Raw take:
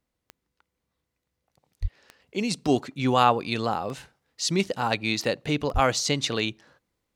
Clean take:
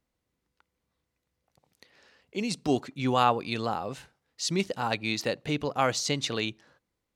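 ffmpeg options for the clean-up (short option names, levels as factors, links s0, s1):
-filter_complex "[0:a]adeclick=t=4,asplit=3[s0][s1][s2];[s0]afade=t=out:st=1.81:d=0.02[s3];[s1]highpass=f=140:w=0.5412,highpass=f=140:w=1.3066,afade=t=in:st=1.81:d=0.02,afade=t=out:st=1.93:d=0.02[s4];[s2]afade=t=in:st=1.93:d=0.02[s5];[s3][s4][s5]amix=inputs=3:normalize=0,asplit=3[s6][s7][s8];[s6]afade=t=out:st=5.73:d=0.02[s9];[s7]highpass=f=140:w=0.5412,highpass=f=140:w=1.3066,afade=t=in:st=5.73:d=0.02,afade=t=out:st=5.85:d=0.02[s10];[s8]afade=t=in:st=5.85:d=0.02[s11];[s9][s10][s11]amix=inputs=3:normalize=0,asetnsamples=n=441:p=0,asendcmd='2.2 volume volume -3.5dB',volume=1"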